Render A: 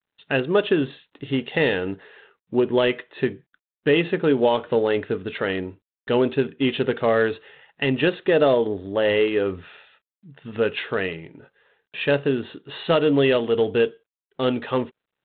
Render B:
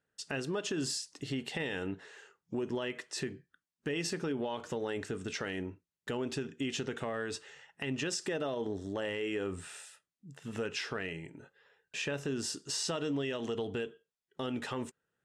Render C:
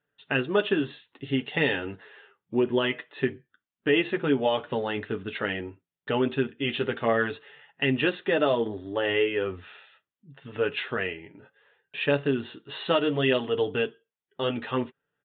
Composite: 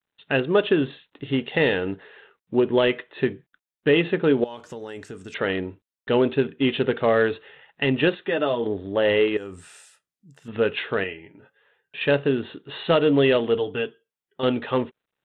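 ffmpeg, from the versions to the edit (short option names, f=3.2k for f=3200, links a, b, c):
-filter_complex "[1:a]asplit=2[a][b];[2:a]asplit=3[c][d][e];[0:a]asplit=6[f][g][h][i][j][k];[f]atrim=end=4.442[l];[a]atrim=start=4.438:end=5.342[m];[g]atrim=start=5.338:end=8.152[n];[c]atrim=start=8.148:end=8.632[o];[h]atrim=start=8.628:end=9.372[p];[b]atrim=start=9.368:end=10.482[q];[i]atrim=start=10.478:end=11.042[r];[d]atrim=start=11.038:end=12.012[s];[j]atrim=start=12.008:end=13.582[t];[e]atrim=start=13.578:end=14.432[u];[k]atrim=start=14.428[v];[l][m]acrossfade=d=0.004:c1=hsin:c2=hsin[w];[w][n]acrossfade=d=0.004:c1=hsin:c2=hsin[x];[x][o]acrossfade=d=0.004:c1=hsin:c2=hsin[y];[y][p]acrossfade=d=0.004:c1=hsin:c2=hsin[z];[z][q]acrossfade=d=0.004:c1=hsin:c2=hsin[aa];[aa][r]acrossfade=d=0.004:c1=hsin:c2=hsin[ab];[ab][s]acrossfade=d=0.004:c1=hsin:c2=hsin[ac];[ac][t]acrossfade=d=0.004:c1=hsin:c2=hsin[ad];[ad][u]acrossfade=d=0.004:c1=hsin:c2=hsin[ae];[ae][v]acrossfade=d=0.004:c1=hsin:c2=hsin"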